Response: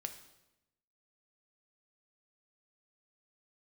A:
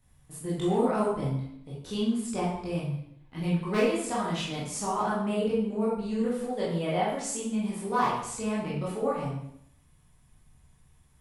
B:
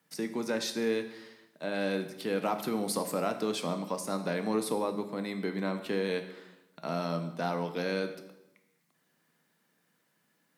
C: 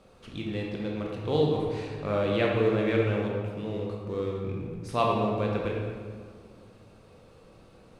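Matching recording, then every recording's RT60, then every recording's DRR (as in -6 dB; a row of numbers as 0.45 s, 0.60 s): B; 0.70 s, 0.95 s, 2.0 s; -7.5 dB, 6.5 dB, -2.0 dB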